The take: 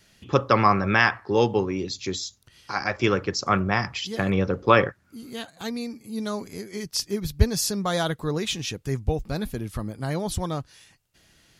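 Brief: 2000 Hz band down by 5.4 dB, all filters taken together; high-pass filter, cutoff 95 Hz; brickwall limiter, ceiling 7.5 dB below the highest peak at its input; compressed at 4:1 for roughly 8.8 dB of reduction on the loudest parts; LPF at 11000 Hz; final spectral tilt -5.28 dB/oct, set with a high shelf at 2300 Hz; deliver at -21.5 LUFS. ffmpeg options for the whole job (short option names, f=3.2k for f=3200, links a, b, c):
-af "highpass=95,lowpass=11k,equalizer=f=2k:t=o:g=-4,highshelf=f=2.3k:g=-6,acompressor=threshold=-25dB:ratio=4,volume=11.5dB,alimiter=limit=-9dB:level=0:latency=1"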